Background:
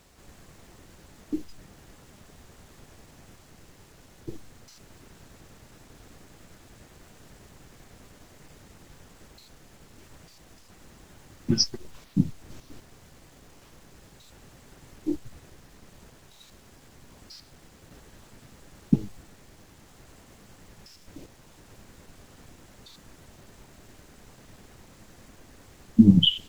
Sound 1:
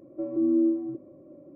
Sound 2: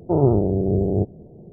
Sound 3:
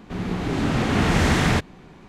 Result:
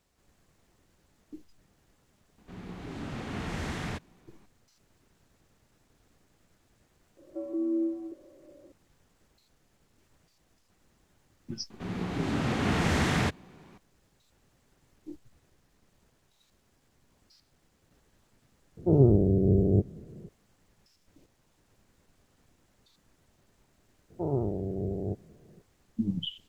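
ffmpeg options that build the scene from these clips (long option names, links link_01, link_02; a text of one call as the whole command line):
ffmpeg -i bed.wav -i cue0.wav -i cue1.wav -i cue2.wav -filter_complex "[3:a]asplit=2[link_01][link_02];[2:a]asplit=2[link_03][link_04];[0:a]volume=-15.5dB[link_05];[1:a]highpass=frequency=340:width=0.5412,highpass=frequency=340:width=1.3066[link_06];[link_02]highpass=60[link_07];[link_03]equalizer=frequency=950:width_type=o:width=1.2:gain=-15[link_08];[link_04]acrusher=bits=10:mix=0:aa=0.000001[link_09];[link_01]atrim=end=2.08,asetpts=PTS-STARTPTS,volume=-16dB,afade=type=in:duration=0.004:curve=hsin,afade=type=out:start_time=2.076:duration=0.004:curve=hsin,adelay=2380[link_10];[link_06]atrim=end=1.55,asetpts=PTS-STARTPTS,volume=-2.5dB,afade=type=in:duration=0.004:curve=hsin,afade=type=out:start_time=1.546:duration=0.004:curve=hsin,adelay=7170[link_11];[link_07]atrim=end=2.08,asetpts=PTS-STARTPTS,volume=-7dB,afade=type=in:duration=0.004:curve=hsin,afade=type=out:start_time=2.076:duration=0.004:curve=hsin,adelay=515970S[link_12];[link_08]atrim=end=1.52,asetpts=PTS-STARTPTS,volume=-1.5dB,afade=type=in:duration=0.004:curve=hsin,afade=type=out:start_time=1.516:duration=0.004:curve=hsin,adelay=18770[link_13];[link_09]atrim=end=1.52,asetpts=PTS-STARTPTS,volume=-12.5dB,afade=type=in:duration=0.004:curve=hsin,afade=type=out:start_time=1.516:duration=0.004:curve=hsin,adelay=24100[link_14];[link_05][link_10][link_11][link_12][link_13][link_14]amix=inputs=6:normalize=0" out.wav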